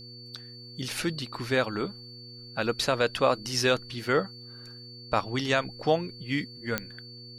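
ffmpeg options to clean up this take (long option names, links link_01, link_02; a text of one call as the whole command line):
ffmpeg -i in.wav -af "adeclick=threshold=4,bandreject=frequency=120.1:width_type=h:width=4,bandreject=frequency=240.2:width_type=h:width=4,bandreject=frequency=360.3:width_type=h:width=4,bandreject=frequency=480.4:width_type=h:width=4,bandreject=frequency=4500:width=30" out.wav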